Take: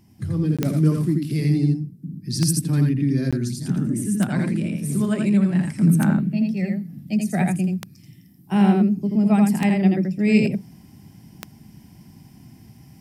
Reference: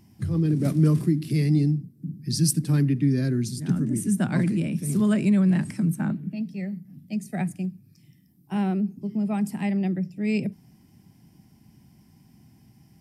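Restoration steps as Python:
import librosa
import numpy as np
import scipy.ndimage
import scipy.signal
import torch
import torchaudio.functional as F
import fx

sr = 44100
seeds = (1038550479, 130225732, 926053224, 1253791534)

y = fx.fix_declick_ar(x, sr, threshold=10.0)
y = fx.fix_interpolate(y, sr, at_s=(0.57, 3.31), length_ms=16.0)
y = fx.fix_echo_inverse(y, sr, delay_ms=83, level_db=-3.5)
y = fx.gain(y, sr, db=fx.steps((0.0, 0.0), (5.81, -7.0)))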